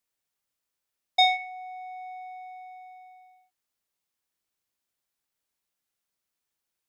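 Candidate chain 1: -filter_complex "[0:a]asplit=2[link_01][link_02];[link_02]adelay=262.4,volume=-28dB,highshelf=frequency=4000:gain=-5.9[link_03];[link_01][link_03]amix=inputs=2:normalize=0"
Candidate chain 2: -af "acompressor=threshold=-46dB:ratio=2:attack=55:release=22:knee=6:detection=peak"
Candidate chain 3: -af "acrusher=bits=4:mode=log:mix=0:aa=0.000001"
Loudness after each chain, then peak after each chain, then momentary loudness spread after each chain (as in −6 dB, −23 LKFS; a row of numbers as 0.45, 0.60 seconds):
−26.5, −38.5, −24.5 LKFS; −11.0, −18.5, −11.0 dBFS; 22, 17, 20 LU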